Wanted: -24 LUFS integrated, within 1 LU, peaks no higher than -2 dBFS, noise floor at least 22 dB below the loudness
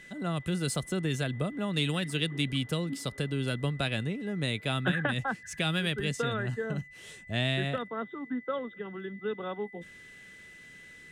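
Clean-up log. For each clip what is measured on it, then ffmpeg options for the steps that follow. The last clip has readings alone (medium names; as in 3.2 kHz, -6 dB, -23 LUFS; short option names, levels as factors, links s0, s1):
steady tone 2 kHz; tone level -49 dBFS; loudness -32.0 LUFS; peak level -16.0 dBFS; loudness target -24.0 LUFS
-> -af "bandreject=f=2000:w=30"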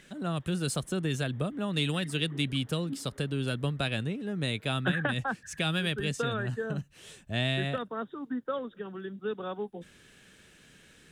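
steady tone not found; loudness -32.0 LUFS; peak level -16.0 dBFS; loudness target -24.0 LUFS
-> -af "volume=2.51"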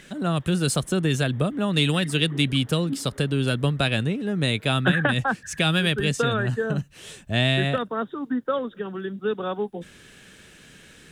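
loudness -24.0 LUFS; peak level -8.0 dBFS; noise floor -50 dBFS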